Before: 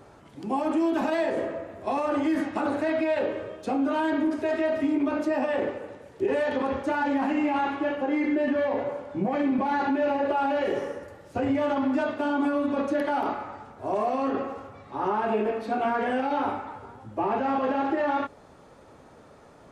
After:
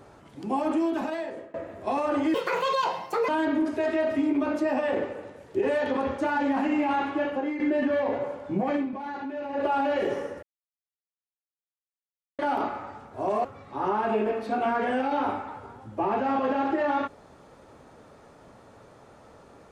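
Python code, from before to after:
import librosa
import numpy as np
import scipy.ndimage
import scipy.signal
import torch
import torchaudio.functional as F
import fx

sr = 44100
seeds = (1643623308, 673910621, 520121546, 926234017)

y = fx.edit(x, sr, fx.fade_out_to(start_s=0.7, length_s=0.84, floor_db=-21.0),
    fx.speed_span(start_s=2.34, length_s=1.6, speed=1.69),
    fx.fade_out_to(start_s=7.99, length_s=0.26, floor_db=-9.0),
    fx.fade_down_up(start_s=9.39, length_s=0.91, db=-9.5, fade_s=0.16),
    fx.silence(start_s=11.08, length_s=1.96),
    fx.cut(start_s=14.1, length_s=0.54), tone=tone)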